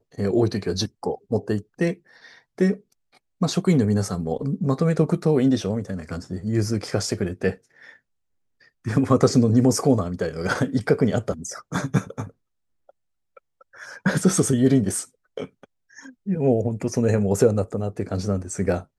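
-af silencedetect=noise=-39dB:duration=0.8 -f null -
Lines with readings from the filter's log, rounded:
silence_start: 7.90
silence_end: 8.85 | silence_duration: 0.95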